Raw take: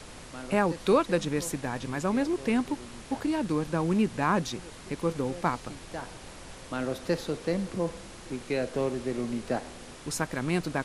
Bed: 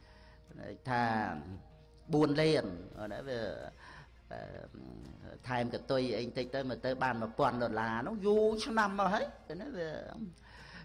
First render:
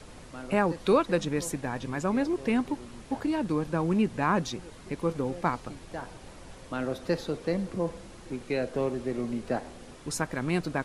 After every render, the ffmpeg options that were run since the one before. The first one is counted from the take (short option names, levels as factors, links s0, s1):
-af "afftdn=nr=6:nf=-46"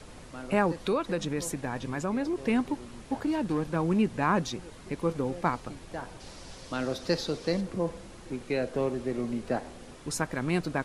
-filter_complex "[0:a]asettb=1/sr,asplit=3[s0][s1][s2];[s0]atrim=end=0.724[s3];[s1]atrim=start=0.72:end=2.43,asetpts=PTS-STARTPTS,afade=t=in:d=0.004:c=qsin,afade=t=out:st=1.706:d=0.004:c=qsin,acompressor=threshold=0.0447:ratio=2:attack=3.2:release=140:knee=1:detection=peak[s4];[s2]atrim=start=2.426[s5];[s3][s4]acrossfade=d=0.004:c1=hsin:c2=qsin[s6];[s6][s5]acrossfade=d=0.004:c1=qsin:c2=hsin,asettb=1/sr,asplit=3[s7][s8][s9];[s7]atrim=end=3.244[s10];[s8]atrim=start=3.24:end=3.76,asetpts=PTS-STARTPTS,afade=t=in:d=0.004:c=qsin,afade=t=out:st=0.516:d=0.004:c=qsin,asoftclip=type=hard:threshold=0.0708[s11];[s9]atrim=start=3.756[s12];[s10][s11]acrossfade=d=0.004:c1=hsin:c2=qsin[s13];[s13][s12]acrossfade=d=0.004:c1=qsin:c2=hsin,asettb=1/sr,asplit=3[s14][s15][s16];[s14]atrim=end=6.204[s17];[s15]atrim=start=6.2:end=7.61,asetpts=PTS-STARTPTS,afade=t=in:d=0.004:c=qsin,afade=t=out:st=1.406:d=0.004:c=qsin,equalizer=f=5000:t=o:w=1.1:g=10[s18];[s16]atrim=start=7.606[s19];[s17][s18]acrossfade=d=0.004:c1=hsin:c2=qsin[s20];[s20][s19]acrossfade=d=0.004:c1=qsin:c2=hsin"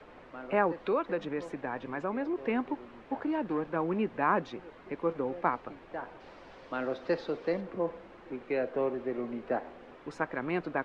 -filter_complex "[0:a]lowpass=6000,acrossover=split=270 2700:gain=0.2 1 0.0794[s0][s1][s2];[s0][s1][s2]amix=inputs=3:normalize=0"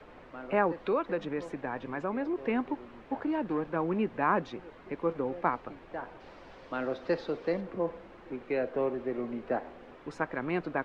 -af "lowshelf=f=130:g=4"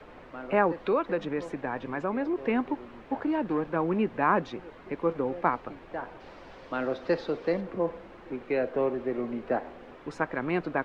-af "volume=1.41"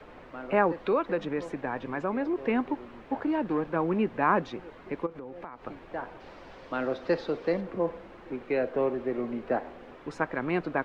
-filter_complex "[0:a]asplit=3[s0][s1][s2];[s0]afade=t=out:st=5.05:d=0.02[s3];[s1]acompressor=threshold=0.0126:ratio=6:attack=3.2:release=140:knee=1:detection=peak,afade=t=in:st=5.05:d=0.02,afade=t=out:st=5.64:d=0.02[s4];[s2]afade=t=in:st=5.64:d=0.02[s5];[s3][s4][s5]amix=inputs=3:normalize=0"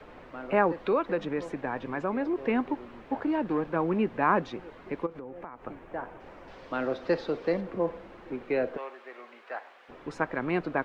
-filter_complex "[0:a]asettb=1/sr,asplit=3[s0][s1][s2];[s0]atrim=end=5.214[s3];[s1]atrim=start=5.21:end=6.48,asetpts=PTS-STARTPTS,afade=t=in:d=0.004:c=qsin,afade=t=out:st=1.266:d=0.004:c=qsin,equalizer=f=4400:w=1.2:g=-10[s4];[s2]atrim=start=6.476[s5];[s3][s4]acrossfade=d=0.004:c1=hsin:c2=qsin[s6];[s6][s5]acrossfade=d=0.004:c1=qsin:c2=hsin,asplit=3[s7][s8][s9];[s7]afade=t=out:st=8.76:d=0.02[s10];[s8]highpass=1100,afade=t=in:st=8.76:d=0.02,afade=t=out:st=9.88:d=0.02[s11];[s9]afade=t=in:st=9.88:d=0.02[s12];[s10][s11][s12]amix=inputs=3:normalize=0"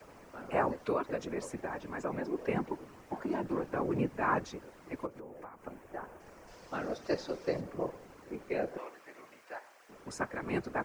-filter_complex "[0:a]afftfilt=real='hypot(re,im)*cos(2*PI*random(0))':imag='hypot(re,im)*sin(2*PI*random(1))':win_size=512:overlap=0.75,acrossover=split=130|450|2700[s0][s1][s2][s3];[s3]aexciter=amount=8.4:drive=3.6:freq=5100[s4];[s0][s1][s2][s4]amix=inputs=4:normalize=0"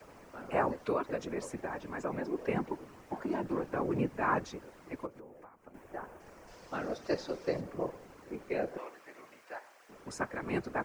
-filter_complex "[0:a]asplit=2[s0][s1];[s0]atrim=end=5.74,asetpts=PTS-STARTPTS,afade=t=out:st=4.8:d=0.94:silence=0.266073[s2];[s1]atrim=start=5.74,asetpts=PTS-STARTPTS,afade=t=in:d=0.004:c=hsin:silence=0.266073[s3];[s2][s3]concat=n=2:v=0:a=1"